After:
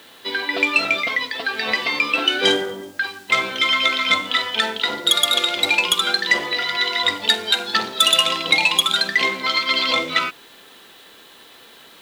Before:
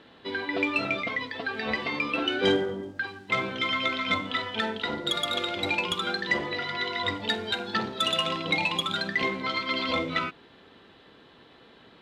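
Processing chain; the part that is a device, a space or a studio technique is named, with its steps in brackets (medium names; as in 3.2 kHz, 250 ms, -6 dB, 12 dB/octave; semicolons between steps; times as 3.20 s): turntable without a phono preamp (RIAA curve recording; white noise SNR 33 dB); trim +6.5 dB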